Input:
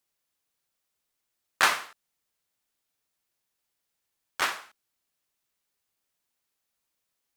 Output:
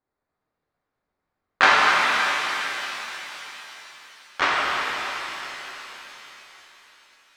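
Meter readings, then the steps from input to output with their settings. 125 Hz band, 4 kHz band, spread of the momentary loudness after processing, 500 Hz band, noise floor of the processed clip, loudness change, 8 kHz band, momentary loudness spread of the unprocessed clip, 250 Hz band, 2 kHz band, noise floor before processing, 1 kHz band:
n/a, +9.5 dB, 23 LU, +12.0 dB, -83 dBFS, +5.0 dB, +2.0 dB, 17 LU, +12.5 dB, +11.0 dB, -82 dBFS, +11.5 dB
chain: Wiener smoothing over 15 samples; air absorption 170 m; shimmer reverb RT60 3.9 s, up +7 st, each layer -8 dB, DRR -5 dB; gain +6 dB

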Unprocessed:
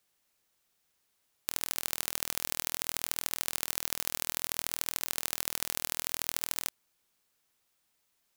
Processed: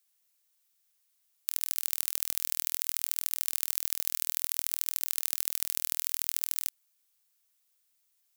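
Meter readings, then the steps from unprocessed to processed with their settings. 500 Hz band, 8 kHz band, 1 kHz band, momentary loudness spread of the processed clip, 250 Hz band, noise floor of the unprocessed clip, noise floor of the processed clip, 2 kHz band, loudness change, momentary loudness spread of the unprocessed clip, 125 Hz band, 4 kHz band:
under -10 dB, +1.0 dB, -9.5 dB, 1 LU, under -15 dB, -76 dBFS, -74 dBFS, -6.0 dB, +3.0 dB, 1 LU, under -15 dB, -2.5 dB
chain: tilt +3.5 dB/oct; gain -9.5 dB

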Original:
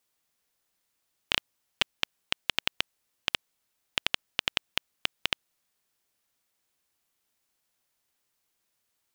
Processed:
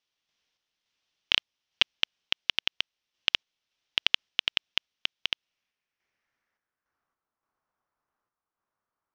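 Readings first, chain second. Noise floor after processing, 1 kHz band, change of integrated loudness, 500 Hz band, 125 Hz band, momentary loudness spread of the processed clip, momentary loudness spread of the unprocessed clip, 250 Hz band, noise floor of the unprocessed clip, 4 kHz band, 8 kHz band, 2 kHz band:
under -85 dBFS, -3.5 dB, +3.5 dB, -4.5 dB, -4.5 dB, 7 LU, 5 LU, -4.5 dB, -78 dBFS, +4.0 dB, -4.5 dB, +1.5 dB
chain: bell 5700 Hz +13 dB 0.6 oct; low-pass sweep 3200 Hz -> 1200 Hz, 5.32–7.27; random-step tremolo; gain -1.5 dB

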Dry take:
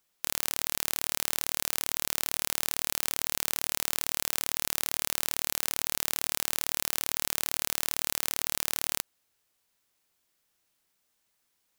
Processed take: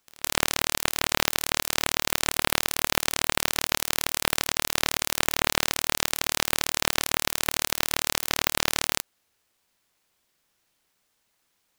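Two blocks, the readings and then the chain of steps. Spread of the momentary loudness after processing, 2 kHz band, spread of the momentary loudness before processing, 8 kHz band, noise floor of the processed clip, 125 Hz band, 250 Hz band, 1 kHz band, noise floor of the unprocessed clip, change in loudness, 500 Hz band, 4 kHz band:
2 LU, +10.0 dB, 0 LU, +3.0 dB, -73 dBFS, +10.5 dB, +11.0 dB, +10.5 dB, -76 dBFS, +4.0 dB, +10.5 dB, +7.5 dB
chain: half-waves squared off; pre-echo 0.162 s -23 dB

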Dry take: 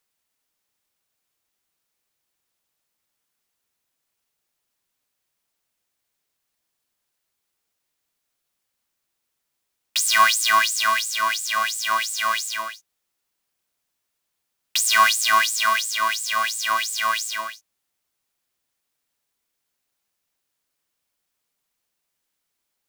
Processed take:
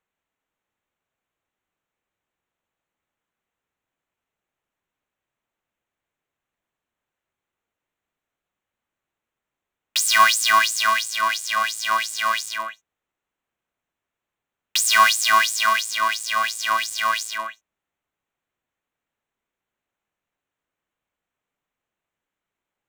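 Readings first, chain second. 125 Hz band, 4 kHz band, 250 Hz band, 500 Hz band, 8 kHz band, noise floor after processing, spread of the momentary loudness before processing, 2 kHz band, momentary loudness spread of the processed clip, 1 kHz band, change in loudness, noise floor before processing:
n/a, +0.5 dB, +1.5 dB, +1.5 dB, -0.5 dB, under -85 dBFS, 11 LU, +1.0 dB, 11 LU, +1.0 dB, +1.0 dB, -79 dBFS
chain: Wiener smoothing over 9 samples; gain +1.5 dB

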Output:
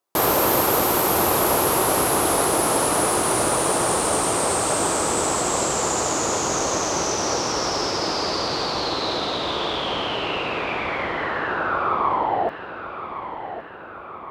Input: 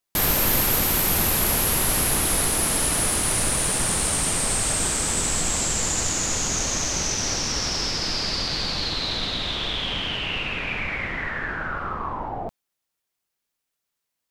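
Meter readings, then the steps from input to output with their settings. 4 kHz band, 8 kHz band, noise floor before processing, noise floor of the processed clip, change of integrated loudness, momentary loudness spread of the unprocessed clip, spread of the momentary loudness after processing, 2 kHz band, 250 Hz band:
-1.5 dB, -1.5 dB, -82 dBFS, -36 dBFS, +1.0 dB, 9 LU, 13 LU, +1.0 dB, +4.5 dB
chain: HPF 87 Hz 12 dB/oct; band shelf 640 Hz +11 dB 2.4 oct; on a send: darkening echo 1.114 s, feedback 64%, low-pass 2900 Hz, level -10.5 dB; on the sum: gain -1.5 dB

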